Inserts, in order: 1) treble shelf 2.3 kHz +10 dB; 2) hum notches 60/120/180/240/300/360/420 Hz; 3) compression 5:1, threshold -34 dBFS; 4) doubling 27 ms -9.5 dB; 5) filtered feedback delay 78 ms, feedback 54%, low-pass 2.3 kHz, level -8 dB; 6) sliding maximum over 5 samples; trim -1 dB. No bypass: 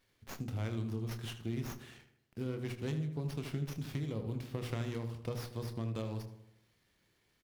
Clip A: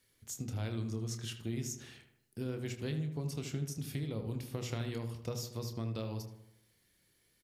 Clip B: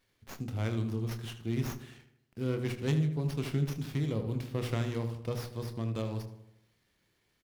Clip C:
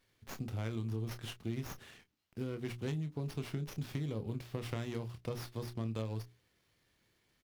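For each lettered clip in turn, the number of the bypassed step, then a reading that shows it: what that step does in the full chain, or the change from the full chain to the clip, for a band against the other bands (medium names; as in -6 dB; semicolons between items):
6, distortion -12 dB; 3, mean gain reduction 3.5 dB; 5, momentary loudness spread change -4 LU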